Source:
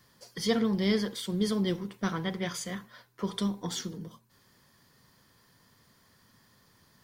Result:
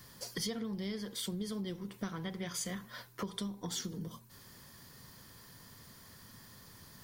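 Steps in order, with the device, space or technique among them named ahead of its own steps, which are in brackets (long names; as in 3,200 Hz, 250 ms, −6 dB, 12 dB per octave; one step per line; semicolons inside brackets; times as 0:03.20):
ASMR close-microphone chain (low-shelf EQ 130 Hz +6 dB; downward compressor 8 to 1, threshold −42 dBFS, peak gain reduction 20.5 dB; high-shelf EQ 6,500 Hz +7.5 dB)
level +5 dB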